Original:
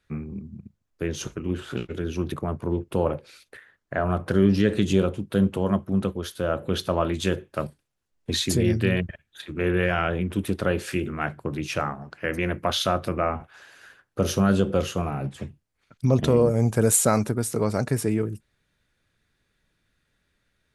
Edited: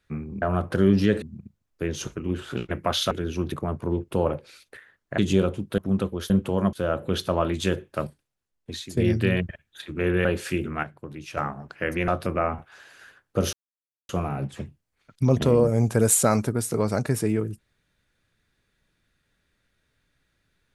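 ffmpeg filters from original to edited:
-filter_complex "[0:a]asplit=16[a][b][c][d][e][f][g][h][i][j][k][l][m][n][o][p];[a]atrim=end=0.422[q];[b]atrim=start=3.978:end=4.782[r];[c]atrim=start=0.418:end=1.912[s];[d]atrim=start=12.498:end=12.902[t];[e]atrim=start=1.908:end=3.982[u];[f]atrim=start=4.778:end=5.382[v];[g]atrim=start=5.808:end=6.332[w];[h]atrim=start=5.378:end=5.812[x];[i]atrim=start=6.328:end=8.57,asetpts=PTS-STARTPTS,afade=t=out:st=1.282:d=0.96:silence=0.133352[y];[j]atrim=start=8.57:end=9.852,asetpts=PTS-STARTPTS,afade=t=in:d=0.004:c=hsin:silence=0.133352[z];[k]atrim=start=10.668:end=11.252[aa];[l]atrim=start=11.248:end=11.792,asetpts=PTS-STARTPTS,volume=-9dB[ab];[m]atrim=start=11.788:end=12.502[ac];[n]atrim=start=12.898:end=14.35,asetpts=PTS-STARTPTS,afade=t=out:st=1.448:d=0.004:c=hsin[ad];[o]atrim=start=14.35:end=14.91,asetpts=PTS-STARTPTS,volume=0[ae];[p]atrim=start=14.91,asetpts=PTS-STARTPTS,afade=t=in:d=0.004:c=hsin[af];[q][r]acrossfade=d=0.004:c1=hsin:c2=hsin[ag];[ag][s]acrossfade=d=0.004:c1=hsin:c2=hsin[ah];[ah][t]acrossfade=d=0.004:c1=hsin:c2=hsin[ai];[ai][u]acrossfade=d=0.004:c1=hsin:c2=hsin[aj];[aj][v]acrossfade=d=0.004:c1=hsin:c2=hsin[ak];[ak][w]acrossfade=d=0.004:c1=hsin:c2=hsin[al];[al][x]acrossfade=d=0.004:c1=hsin:c2=hsin[am];[y][z]concat=n=2:v=0:a=1[an];[am][an]acrossfade=d=0.004:c1=hsin:c2=hsin[ao];[ao][aa]acrossfade=d=0.004:c1=hsin:c2=hsin[ap];[ap][ab]acrossfade=d=0.004:c1=hsin:c2=hsin[aq];[aq][ac]acrossfade=d=0.004:c1=hsin:c2=hsin[ar];[ad][ae][af]concat=n=3:v=0:a=1[as];[ar][as]acrossfade=d=0.004:c1=hsin:c2=hsin"

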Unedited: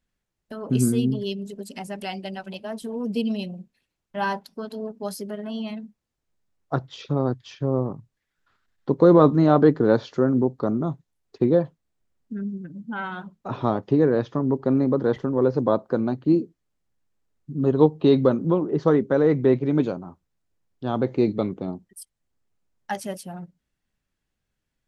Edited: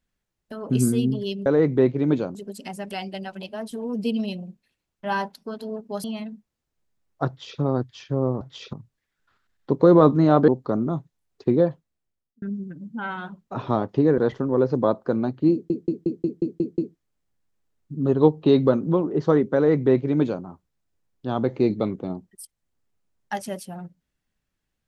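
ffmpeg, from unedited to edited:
-filter_complex "[0:a]asplit=16[a][b][c][d][e][f][g][h][i][j][k][l][m][n][o][p];[a]atrim=end=1.462[q];[b]atrim=start=19.128:end=20.022[r];[c]atrim=start=1.458:end=5.152[s];[d]atrim=start=5.548:end=7.922[t];[e]atrim=start=6.788:end=7.112[u];[f]atrim=start=7.918:end=9.672[v];[g]atrim=start=10.418:end=12.36,asetpts=PTS-STARTPTS,afade=t=out:st=1.162:d=0.78[w];[h]atrim=start=12.36:end=14.122,asetpts=PTS-STARTPTS,afade=t=in:d=0.004:c=hsin[x];[i]atrim=start=15.018:end=16.542[y];[j]atrim=start=16.358:end=16.542[z];[k]atrim=start=16.358:end=16.542[aa];[l]atrim=start=16.358:end=16.542[ab];[m]atrim=start=16.358:end=16.542[ac];[n]atrim=start=16.358:end=16.542[ad];[o]atrim=start=16.358:end=16.542[ae];[p]atrim=start=16.358[af];[q][r]acrossfade=d=0.004:c1=hsin:c2=hsin[ag];[ag][s]acrossfade=d=0.004:c1=hsin:c2=hsin[ah];[ah][t]acrossfade=d=0.004:c1=hsin:c2=hsin[ai];[ai][u]acrossfade=d=0.004:c1=hsin:c2=hsin[aj];[aj][v]acrossfade=d=0.004:c1=hsin:c2=hsin[ak];[w][x]concat=n=2:v=0:a=1[al];[ak][al]acrossfade=d=0.004:c1=hsin:c2=hsin[am];[am][y]acrossfade=d=0.004:c1=hsin:c2=hsin[an];[an][z]acrossfade=d=0.004:c1=hsin:c2=hsin[ao];[ao][aa]acrossfade=d=0.004:c1=hsin:c2=hsin[ap];[ap][ab]acrossfade=d=0.004:c1=hsin:c2=hsin[aq];[aq][ac]acrossfade=d=0.004:c1=hsin:c2=hsin[ar];[ar][ad]acrossfade=d=0.004:c1=hsin:c2=hsin[as];[as][ae]acrossfade=d=0.004:c1=hsin:c2=hsin[at];[at][af]acrossfade=d=0.004:c1=hsin:c2=hsin"

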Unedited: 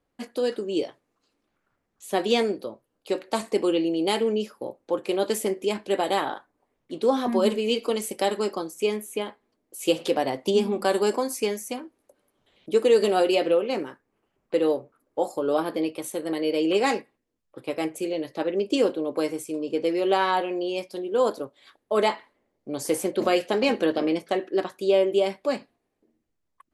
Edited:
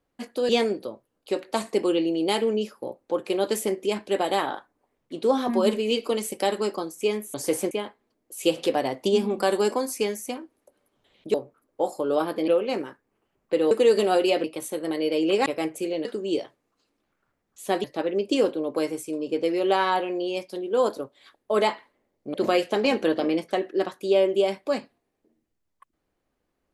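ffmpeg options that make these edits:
-filter_complex "[0:a]asplit=12[a][b][c][d][e][f][g][h][i][j][k][l];[a]atrim=end=0.492[m];[b]atrim=start=2.278:end=9.132[n];[c]atrim=start=22.748:end=23.122[o];[d]atrim=start=9.128:end=12.762[p];[e]atrim=start=14.718:end=15.862[q];[f]atrim=start=13.488:end=14.722[r];[g]atrim=start=12.758:end=13.492[s];[h]atrim=start=15.858:end=16.882[t];[i]atrim=start=17.658:end=18.252[u];[j]atrim=start=0.488:end=2.282[v];[k]atrim=start=18.248:end=22.752[w];[l]atrim=start=23.118[x];[m][n]acrossfade=d=0.004:c1=hsin:c2=hsin[y];[y][o]acrossfade=d=0.004:c1=hsin:c2=hsin[z];[z][p]acrossfade=d=0.004:c1=hsin:c2=hsin[aa];[aa][q]acrossfade=d=0.004:c1=hsin:c2=hsin[ab];[ab][r]acrossfade=d=0.004:c1=hsin:c2=hsin[ac];[ac][s]acrossfade=d=0.004:c1=hsin:c2=hsin[ad];[ad][t]acrossfade=d=0.004:c1=hsin:c2=hsin[ae];[ae][u]acrossfade=d=0.004:c1=hsin:c2=hsin[af];[af][v]acrossfade=d=0.004:c1=hsin:c2=hsin[ag];[ag][w]acrossfade=d=0.004:c1=hsin:c2=hsin[ah];[ah][x]acrossfade=d=0.004:c1=hsin:c2=hsin"

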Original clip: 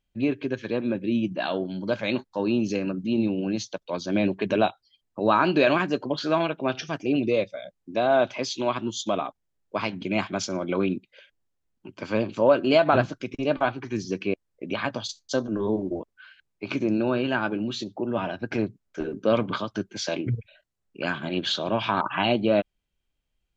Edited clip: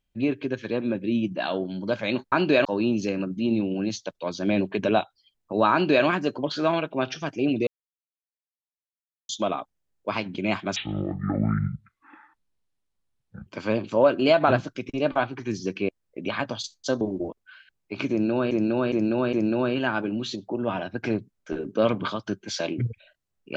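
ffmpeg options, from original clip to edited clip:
-filter_complex "[0:a]asplit=11[a][b][c][d][e][f][g][h][i][j][k];[a]atrim=end=2.322[l];[b]atrim=start=5.388:end=5.722[m];[c]atrim=start=2.318:end=7.34,asetpts=PTS-STARTPTS,afade=t=out:st=5.018:d=0.004:c=hsin[n];[d]atrim=start=7.34:end=8.96,asetpts=PTS-STARTPTS,volume=0[o];[e]atrim=start=8.96:end=10.434,asetpts=PTS-STARTPTS,afade=t=in:d=0.004:c=hsin[p];[f]atrim=start=10.43:end=11.92,asetpts=PTS-STARTPTS,asetrate=24255,aresample=44100[q];[g]atrim=start=11.916:end=15.462[r];[h]atrim=start=15.718:end=17.222[s];[i]atrim=start=16.808:end=17.222[t];[j]atrim=start=16.808:end=17.222[u];[k]atrim=start=16.808[v];[l][m]acrossfade=d=0.004:c1=hsin:c2=hsin[w];[n][o][p]concat=n=3:v=0:a=1[x];[w][x]acrossfade=d=0.004:c1=hsin:c2=hsin[y];[y][q]acrossfade=d=0.004:c1=hsin:c2=hsin[z];[z][r]acrossfade=d=0.004:c1=hsin:c2=hsin[aa];[aa][s]acrossfade=d=0.004:c1=hsin:c2=hsin[ab];[ab][t]acrossfade=d=0.004:c1=hsin:c2=hsin[ac];[ac][u]acrossfade=d=0.004:c1=hsin:c2=hsin[ad];[ad][v]acrossfade=d=0.004:c1=hsin:c2=hsin"

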